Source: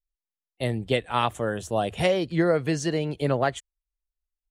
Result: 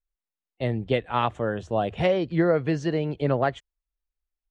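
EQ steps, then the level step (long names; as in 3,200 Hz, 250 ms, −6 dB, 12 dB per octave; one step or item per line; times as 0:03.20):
high-frequency loss of the air 120 metres
high-shelf EQ 4,000 Hz −7.5 dB
+1.0 dB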